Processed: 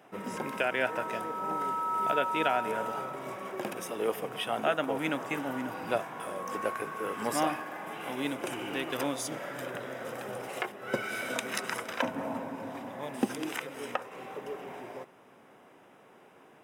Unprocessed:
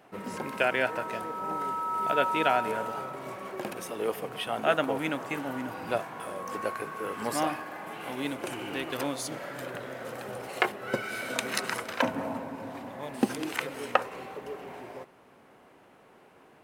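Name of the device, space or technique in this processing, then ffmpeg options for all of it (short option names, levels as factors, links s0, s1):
PA system with an anti-feedback notch: -af "highpass=110,asuperstop=centerf=4300:order=4:qfactor=7.8,alimiter=limit=0.188:level=0:latency=1:release=400"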